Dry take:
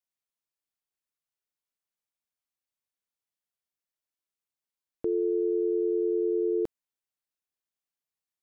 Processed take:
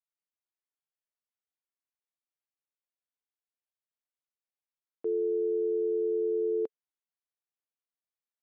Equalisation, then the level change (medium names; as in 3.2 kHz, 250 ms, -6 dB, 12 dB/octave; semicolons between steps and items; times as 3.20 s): high-pass 300 Hz; distance through air 220 m; dynamic bell 440 Hz, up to +7 dB, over -44 dBFS, Q 4.6; -5.5 dB